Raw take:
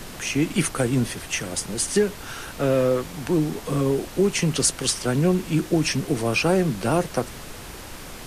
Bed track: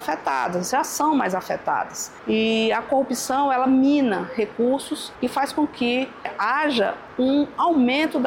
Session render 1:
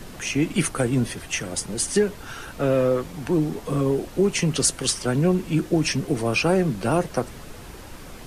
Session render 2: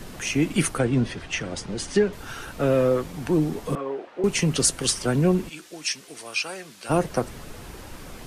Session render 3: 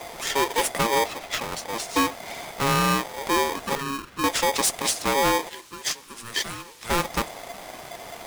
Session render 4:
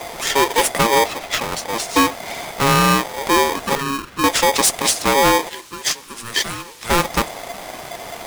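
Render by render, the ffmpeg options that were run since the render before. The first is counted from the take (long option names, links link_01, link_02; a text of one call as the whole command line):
ffmpeg -i in.wav -af "afftdn=noise_reduction=6:noise_floor=-39" out.wav
ffmpeg -i in.wav -filter_complex "[0:a]asettb=1/sr,asplit=3[link_01][link_02][link_03];[link_01]atrim=end=0.784[link_04];[link_02]atrim=start=0.78:end=2.13,asetpts=PTS-STARTPTS,afade=type=in:duration=0.004:curve=qsin,afade=type=out:start_time=1.346:duration=0.004:curve=qsin,lowpass=4800[link_05];[link_03]atrim=start=2.126[link_06];[link_04][link_05]acrossfade=duration=0.004:curve1=hsin:curve2=qsin[link_07];[link_07][link_06]acrossfade=duration=0.004:curve1=qsin:curve2=hsin,asettb=1/sr,asplit=3[link_08][link_09][link_10];[link_08]atrim=end=3.754[link_11];[link_09]atrim=start=3.75:end=4.24,asetpts=PTS-STARTPTS,afade=type=in:duration=0.004:curve=qsin,afade=type=out:start_time=0.486:duration=0.004:curve=qsin,highpass=580,lowpass=2200[link_12];[link_10]atrim=start=4.236[link_13];[link_11][link_12]acrossfade=duration=0.004:curve1=hsin:curve2=qsin[link_14];[link_14][link_13]acrossfade=duration=0.004:curve1=qsin:curve2=hsin,asplit=3[link_15][link_16][link_17];[link_15]afade=type=out:start_time=5.48:duration=0.02[link_18];[link_16]bandpass=frequency=5900:width_type=q:width=0.53,afade=type=in:start_time=5.48:duration=0.02,afade=type=out:start_time=6.89:duration=0.02[link_19];[link_17]afade=type=in:start_time=6.89:duration=0.02[link_20];[link_18][link_19][link_20]amix=inputs=3:normalize=0" out.wav
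ffmpeg -i in.wav -af "asoftclip=type=hard:threshold=-16.5dB,aeval=exprs='val(0)*sgn(sin(2*PI*690*n/s))':channel_layout=same" out.wav
ffmpeg -i in.wav -af "volume=7dB" out.wav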